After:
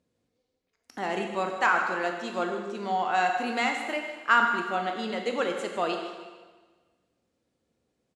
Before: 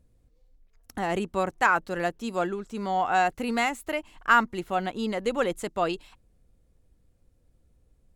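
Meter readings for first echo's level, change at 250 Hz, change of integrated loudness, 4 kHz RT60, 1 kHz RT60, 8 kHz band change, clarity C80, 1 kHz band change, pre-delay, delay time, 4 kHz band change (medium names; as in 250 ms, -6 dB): -13.0 dB, -3.0 dB, -0.5 dB, 1.3 s, 1.4 s, -3.0 dB, 6.0 dB, -0.5 dB, 7 ms, 153 ms, +1.5 dB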